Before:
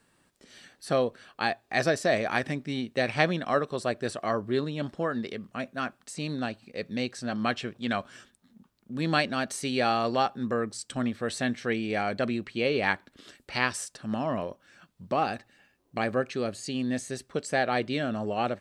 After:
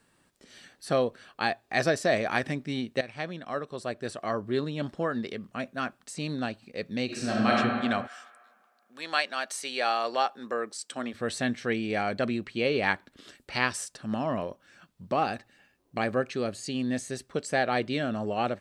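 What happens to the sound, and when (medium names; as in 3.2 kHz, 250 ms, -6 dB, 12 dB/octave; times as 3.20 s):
3.01–4.78 s: fade in, from -14.5 dB
7.05–7.56 s: reverb throw, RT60 1.9 s, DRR -4.5 dB
8.06–11.13 s: high-pass 1.2 kHz -> 330 Hz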